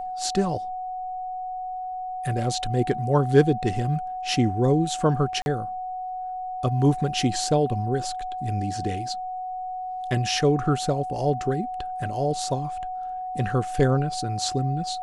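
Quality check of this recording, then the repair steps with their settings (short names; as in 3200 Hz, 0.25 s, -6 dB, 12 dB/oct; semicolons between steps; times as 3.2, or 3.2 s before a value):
tone 740 Hz -29 dBFS
5.42–5.46 gap 41 ms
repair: notch 740 Hz, Q 30; interpolate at 5.42, 41 ms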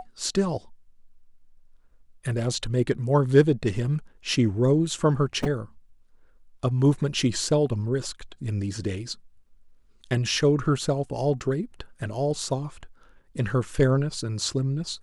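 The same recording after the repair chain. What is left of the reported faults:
none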